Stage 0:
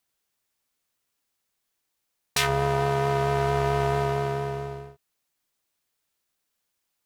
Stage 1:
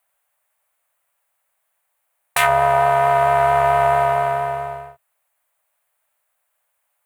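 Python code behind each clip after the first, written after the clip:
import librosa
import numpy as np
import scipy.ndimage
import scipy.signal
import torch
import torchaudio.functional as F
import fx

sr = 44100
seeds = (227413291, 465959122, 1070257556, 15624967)

y = fx.curve_eq(x, sr, hz=(130.0, 300.0, 590.0, 2200.0, 5400.0, 8800.0), db=(0, -20, 15, 10, -6, 9))
y = y * librosa.db_to_amplitude(-1.5)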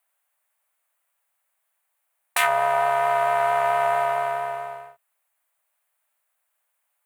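y = fx.highpass(x, sr, hz=690.0, slope=6)
y = y * librosa.db_to_amplitude(-3.0)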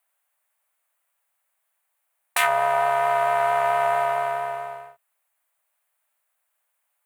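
y = x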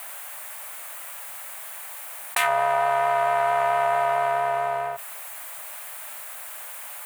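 y = fx.env_flatten(x, sr, amount_pct=70)
y = y * librosa.db_to_amplitude(-2.5)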